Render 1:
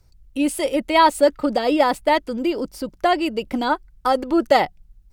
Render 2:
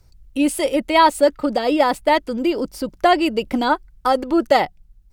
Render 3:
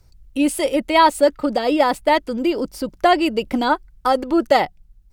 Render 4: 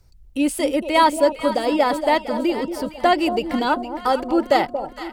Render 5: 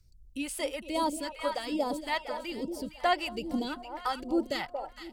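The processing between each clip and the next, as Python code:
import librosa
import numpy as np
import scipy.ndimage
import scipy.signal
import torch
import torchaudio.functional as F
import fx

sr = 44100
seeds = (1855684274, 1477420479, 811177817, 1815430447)

y1 = fx.rider(x, sr, range_db=4, speed_s=2.0)
y1 = y1 * 10.0 ** (1.0 / 20.0)
y2 = y1
y3 = fx.echo_alternate(y2, sr, ms=230, hz=880.0, feedback_pct=69, wet_db=-8.5)
y3 = y3 * 10.0 ** (-2.0 / 20.0)
y4 = fx.phaser_stages(y3, sr, stages=2, low_hz=170.0, high_hz=1900.0, hz=1.2, feedback_pct=30)
y4 = y4 * 10.0 ** (-8.5 / 20.0)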